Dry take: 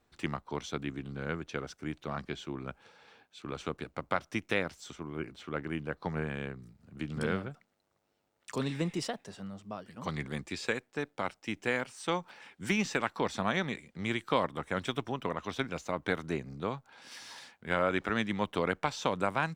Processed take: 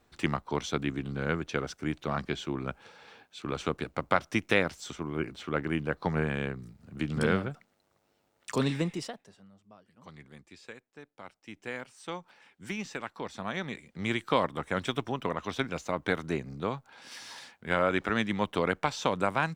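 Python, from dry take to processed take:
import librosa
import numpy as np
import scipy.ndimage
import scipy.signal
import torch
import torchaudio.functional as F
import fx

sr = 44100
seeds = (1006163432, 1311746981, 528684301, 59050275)

y = fx.gain(x, sr, db=fx.line((8.69, 5.5), (9.12, -4.5), (9.46, -14.0), (11.11, -14.0), (11.75, -6.5), (13.33, -6.5), (14.06, 2.5)))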